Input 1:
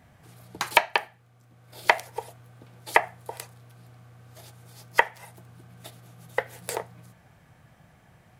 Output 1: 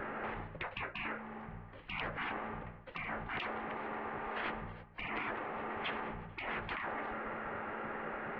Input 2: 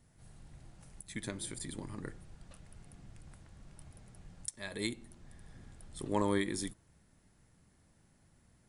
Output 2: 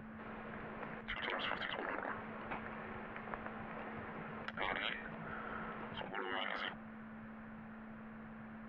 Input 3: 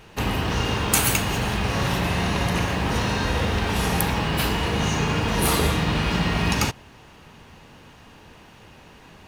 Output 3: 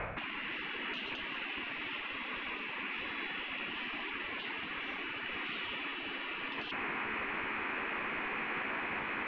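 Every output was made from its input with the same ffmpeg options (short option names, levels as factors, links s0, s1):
-af "equalizer=f=250:t=o:w=1:g=7,equalizer=f=500:t=o:w=1:g=-8,equalizer=f=1000:t=o:w=1:g=7,equalizer=f=2000:t=o:w=1:g=5,aeval=exprs='val(0)+0.00794*(sin(2*PI*60*n/s)+sin(2*PI*2*60*n/s)/2+sin(2*PI*3*60*n/s)/3+sin(2*PI*4*60*n/s)/4+sin(2*PI*5*60*n/s)/5)':c=same,highpass=f=200:t=q:w=0.5412,highpass=f=200:t=q:w=1.307,lowpass=f=2900:t=q:w=0.5176,lowpass=f=2900:t=q:w=0.7071,lowpass=f=2900:t=q:w=1.932,afreqshift=-340,areverse,acompressor=threshold=0.0141:ratio=12,areverse,afftfilt=real='re*lt(hypot(re,im),0.01)':imag='im*lt(hypot(re,im),0.01)':win_size=1024:overlap=0.75,volume=6.68"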